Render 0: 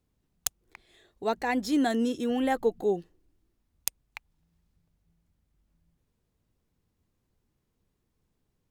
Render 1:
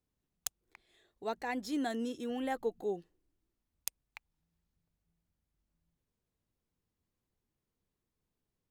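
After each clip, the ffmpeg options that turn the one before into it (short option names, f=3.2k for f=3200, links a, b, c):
-af "lowshelf=f=220:g=-4,volume=-8dB"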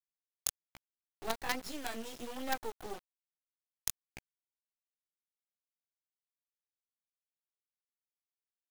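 -filter_complex "[0:a]acrossover=split=620|5100[a][b][c];[a]acompressor=threshold=-44dB:ratio=16[d];[d][b][c]amix=inputs=3:normalize=0,flanger=delay=15:depth=7.8:speed=1.2,acrusher=bits=6:dc=4:mix=0:aa=0.000001,volume=7dB"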